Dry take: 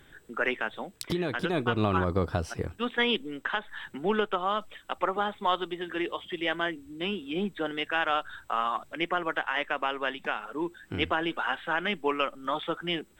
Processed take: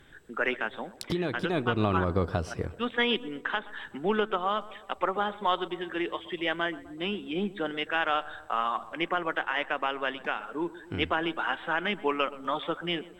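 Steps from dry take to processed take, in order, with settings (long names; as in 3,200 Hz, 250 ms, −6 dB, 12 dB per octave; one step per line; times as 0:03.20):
high-shelf EQ 11,000 Hz −9.5 dB
tape delay 126 ms, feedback 67%, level −16 dB, low-pass 1,400 Hz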